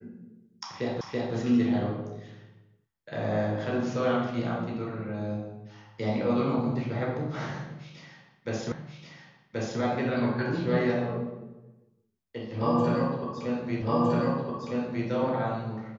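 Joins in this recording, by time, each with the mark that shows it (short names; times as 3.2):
1.01 repeat of the last 0.33 s
8.72 repeat of the last 1.08 s
13.82 repeat of the last 1.26 s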